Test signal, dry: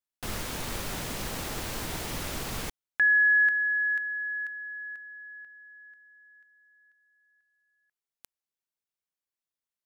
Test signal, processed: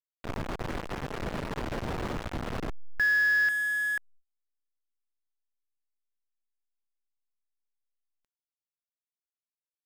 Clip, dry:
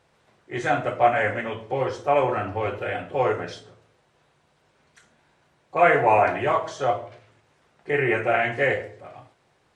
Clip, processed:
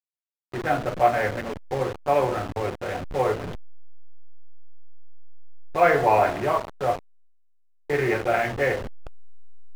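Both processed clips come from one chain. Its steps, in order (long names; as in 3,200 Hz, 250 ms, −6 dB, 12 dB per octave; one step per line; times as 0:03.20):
hold until the input has moved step −26 dBFS
low-pass filter 2,400 Hz 6 dB per octave
noise gate −53 dBFS, range −25 dB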